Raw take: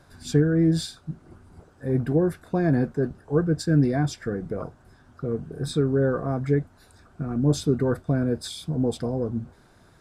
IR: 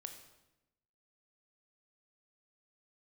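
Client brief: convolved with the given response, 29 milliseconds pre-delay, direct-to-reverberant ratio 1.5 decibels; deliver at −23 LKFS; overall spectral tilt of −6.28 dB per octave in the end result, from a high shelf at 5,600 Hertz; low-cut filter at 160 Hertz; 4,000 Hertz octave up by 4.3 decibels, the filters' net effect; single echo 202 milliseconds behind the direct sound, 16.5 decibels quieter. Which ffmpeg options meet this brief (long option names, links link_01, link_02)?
-filter_complex "[0:a]highpass=160,equalizer=frequency=4000:width_type=o:gain=8,highshelf=frequency=5600:gain=-7.5,aecho=1:1:202:0.15,asplit=2[link_01][link_02];[1:a]atrim=start_sample=2205,adelay=29[link_03];[link_02][link_03]afir=irnorm=-1:irlink=0,volume=2.5dB[link_04];[link_01][link_04]amix=inputs=2:normalize=0,volume=1.5dB"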